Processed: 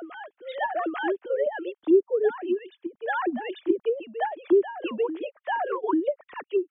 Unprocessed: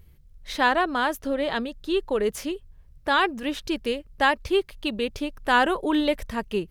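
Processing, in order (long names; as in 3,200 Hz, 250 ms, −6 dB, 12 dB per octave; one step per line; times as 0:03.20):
three sine waves on the formant tracks
treble cut that deepens with the level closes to 460 Hz, closed at −19 dBFS
on a send: backwards echo 842 ms −10 dB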